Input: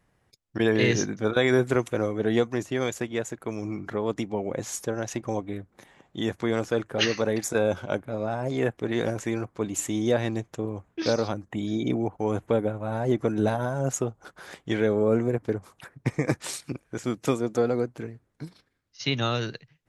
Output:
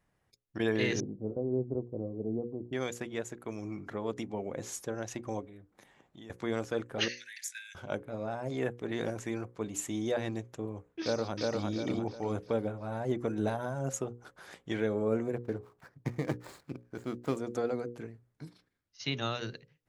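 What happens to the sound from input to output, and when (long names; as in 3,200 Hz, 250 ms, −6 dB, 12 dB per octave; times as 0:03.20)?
0:01.00–0:02.73: Gaussian smoothing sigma 15 samples
0:05.46–0:06.30: downward compressor 3 to 1, threshold −43 dBFS
0:07.08–0:07.75: Butterworth high-pass 1,600 Hz 96 dB per octave
0:11.02–0:11.64: delay throw 350 ms, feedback 40%, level −1 dB
0:15.36–0:17.37: running median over 15 samples
whole clip: mains-hum notches 60/120/180/240/300/360/420/480/540 Hz; level −7 dB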